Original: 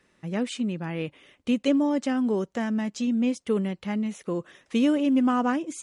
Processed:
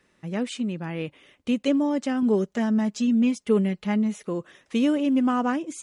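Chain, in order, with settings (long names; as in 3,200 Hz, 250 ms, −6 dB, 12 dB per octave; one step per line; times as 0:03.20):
0:02.22–0:04.26: comb filter 4.8 ms, depth 70%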